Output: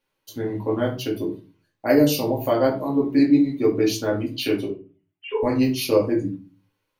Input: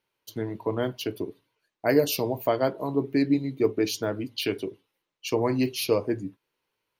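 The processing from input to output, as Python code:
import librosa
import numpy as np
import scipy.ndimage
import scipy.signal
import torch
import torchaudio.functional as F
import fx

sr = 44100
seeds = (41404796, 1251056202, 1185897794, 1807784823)

y = fx.sine_speech(x, sr, at=(4.68, 5.43))
y = fx.room_shoebox(y, sr, seeds[0], volume_m3=150.0, walls='furnished', distance_m=2.3)
y = y * 10.0 ** (-1.5 / 20.0)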